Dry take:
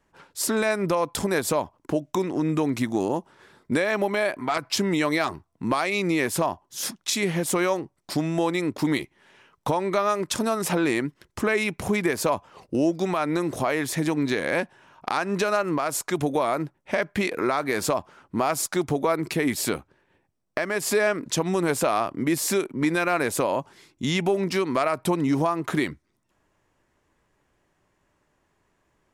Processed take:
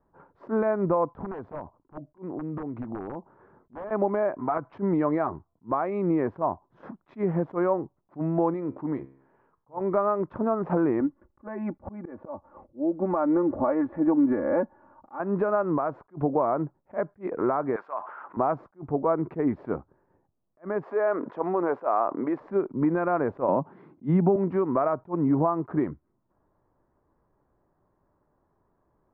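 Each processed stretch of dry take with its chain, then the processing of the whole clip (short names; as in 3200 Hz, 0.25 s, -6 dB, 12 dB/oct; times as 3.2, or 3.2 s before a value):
1.09–3.91 wrapped overs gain 15.5 dB + compressor, threshold -30 dBFS
8.54–9.81 LPF 8800 Hz + resonator 67 Hz, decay 0.62 s, mix 50%
11–15.2 comb 3.5 ms, depth 84% + auto swell 0.307 s + air absorption 420 m
17.76–18.37 HPF 1300 Hz + fast leveller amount 70%
20.83–22.4 HPF 460 Hz + fast leveller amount 50%
23.48–24.36 resonant high-pass 180 Hz, resonance Q 2.2 + three-band squash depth 70%
whole clip: LPF 1200 Hz 24 dB/oct; attack slew limiter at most 370 dB/s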